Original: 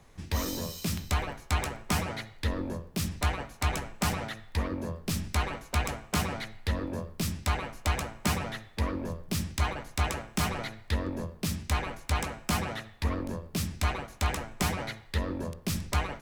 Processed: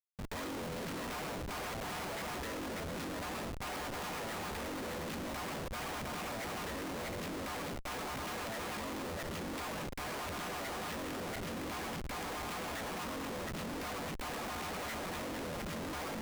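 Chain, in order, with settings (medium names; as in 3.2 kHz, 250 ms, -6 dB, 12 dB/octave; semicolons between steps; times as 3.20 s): backward echo that repeats 355 ms, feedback 43%, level -3.5 dB; three-band isolator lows -19 dB, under 220 Hz, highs -15 dB, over 3 kHz; Schmitt trigger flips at -46 dBFS; trim -4.5 dB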